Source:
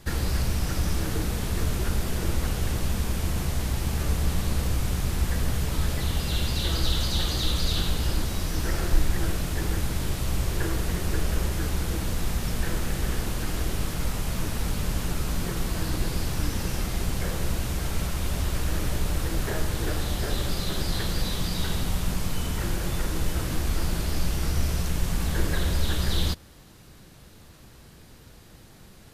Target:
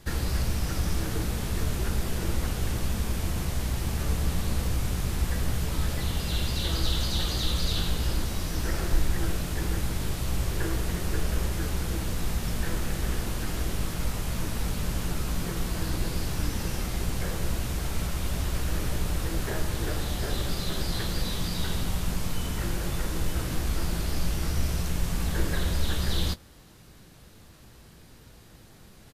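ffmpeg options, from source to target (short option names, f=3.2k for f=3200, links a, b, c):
-filter_complex "[0:a]asplit=2[a][b];[b]adelay=18,volume=-13dB[c];[a][c]amix=inputs=2:normalize=0,volume=-2dB"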